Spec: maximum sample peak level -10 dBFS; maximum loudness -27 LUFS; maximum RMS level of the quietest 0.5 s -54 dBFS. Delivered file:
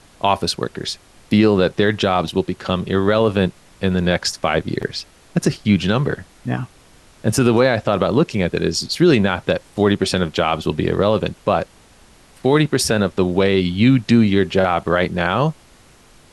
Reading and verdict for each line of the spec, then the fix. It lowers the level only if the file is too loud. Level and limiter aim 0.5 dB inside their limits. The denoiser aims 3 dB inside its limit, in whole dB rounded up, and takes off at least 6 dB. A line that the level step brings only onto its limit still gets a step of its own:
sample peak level -4.0 dBFS: fail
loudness -18.5 LUFS: fail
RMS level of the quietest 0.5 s -49 dBFS: fail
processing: gain -9 dB

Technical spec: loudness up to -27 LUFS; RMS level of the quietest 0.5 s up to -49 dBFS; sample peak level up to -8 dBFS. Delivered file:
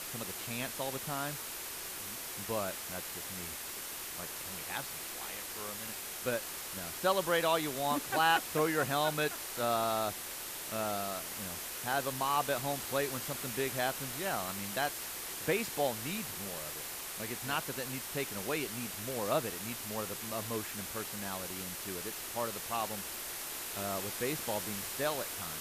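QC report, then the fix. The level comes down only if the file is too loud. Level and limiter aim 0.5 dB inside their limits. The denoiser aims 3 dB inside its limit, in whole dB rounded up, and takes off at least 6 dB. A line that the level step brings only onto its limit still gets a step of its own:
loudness -35.0 LUFS: OK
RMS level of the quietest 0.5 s -42 dBFS: fail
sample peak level -16.0 dBFS: OK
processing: denoiser 10 dB, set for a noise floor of -42 dBFS

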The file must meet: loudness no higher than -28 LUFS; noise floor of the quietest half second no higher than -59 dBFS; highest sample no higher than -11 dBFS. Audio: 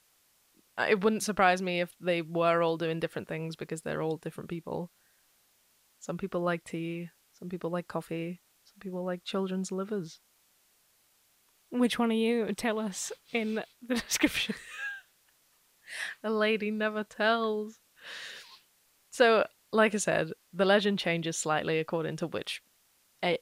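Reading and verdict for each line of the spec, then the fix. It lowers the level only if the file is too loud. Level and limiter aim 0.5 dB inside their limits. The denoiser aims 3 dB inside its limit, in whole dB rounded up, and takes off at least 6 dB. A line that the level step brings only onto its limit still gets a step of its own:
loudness -30.5 LUFS: OK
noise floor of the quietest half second -68 dBFS: OK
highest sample -9.5 dBFS: fail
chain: limiter -11.5 dBFS

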